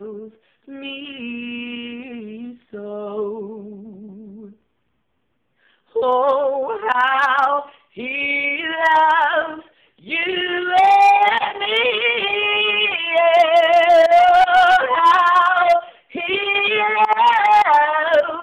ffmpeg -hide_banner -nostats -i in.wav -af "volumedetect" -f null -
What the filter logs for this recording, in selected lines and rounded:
mean_volume: -17.3 dB
max_volume: -6.7 dB